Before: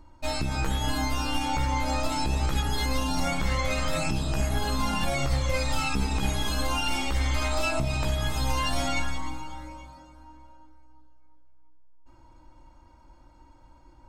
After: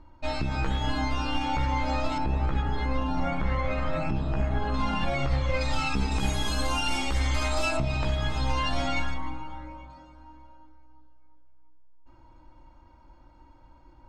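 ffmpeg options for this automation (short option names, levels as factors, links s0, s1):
-af "asetnsamples=n=441:p=0,asendcmd='2.18 lowpass f 1900;4.74 lowpass f 3200;5.61 lowpass f 5500;6.12 lowpass f 10000;7.77 lowpass f 4300;9.14 lowpass f 2500;9.9 lowpass f 4200',lowpass=3800"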